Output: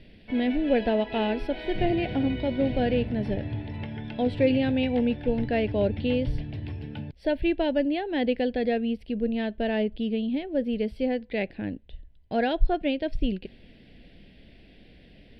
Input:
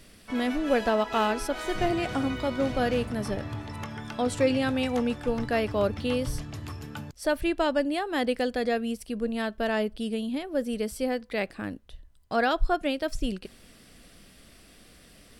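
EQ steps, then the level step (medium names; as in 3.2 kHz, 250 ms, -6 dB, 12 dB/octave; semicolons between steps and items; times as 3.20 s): distance through air 230 m; static phaser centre 2.9 kHz, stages 4; +4.0 dB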